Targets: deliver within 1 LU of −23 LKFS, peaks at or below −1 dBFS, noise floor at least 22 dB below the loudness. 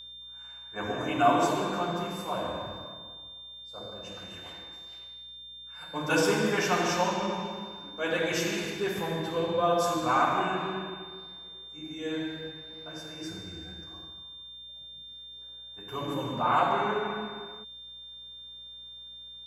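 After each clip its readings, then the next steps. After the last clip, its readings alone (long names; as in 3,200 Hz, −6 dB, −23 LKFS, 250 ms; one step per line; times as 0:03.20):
mains hum 60 Hz; hum harmonics up to 360 Hz; level of the hum −57 dBFS; interfering tone 3,600 Hz; level of the tone −43 dBFS; integrated loudness −30.0 LKFS; sample peak −10.0 dBFS; target loudness −23.0 LKFS
→ hum removal 60 Hz, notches 6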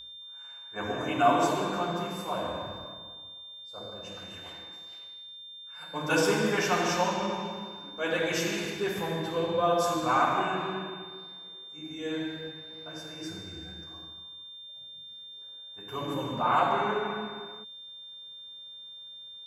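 mains hum none found; interfering tone 3,600 Hz; level of the tone −43 dBFS
→ notch filter 3,600 Hz, Q 30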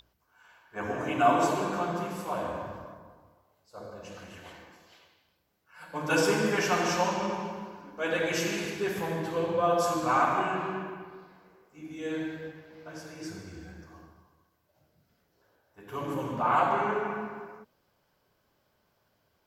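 interfering tone none found; integrated loudness −29.0 LKFS; sample peak −10.5 dBFS; target loudness −23.0 LKFS
→ level +6 dB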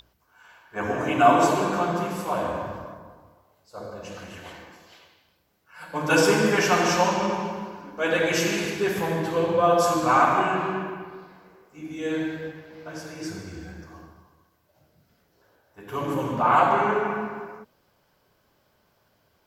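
integrated loudness −23.5 LKFS; sample peak −4.5 dBFS; background noise floor −67 dBFS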